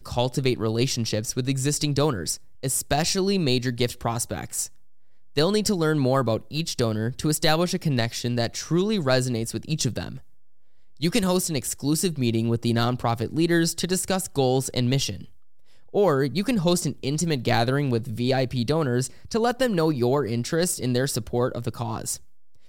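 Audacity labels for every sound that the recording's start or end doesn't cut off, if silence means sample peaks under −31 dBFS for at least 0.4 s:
5.370000	10.160000	sound
11.020000	15.240000	sound
15.940000	22.160000	sound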